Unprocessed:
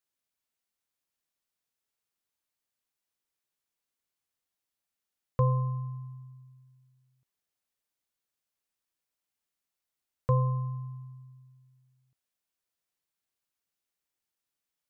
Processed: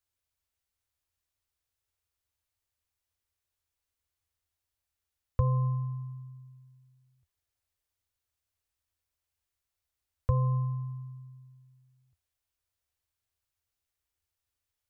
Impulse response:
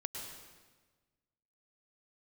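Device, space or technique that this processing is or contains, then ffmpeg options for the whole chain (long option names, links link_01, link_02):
car stereo with a boomy subwoofer: -af "lowshelf=frequency=120:width_type=q:width=3:gain=11.5,alimiter=limit=-15dB:level=0:latency=1:release=270"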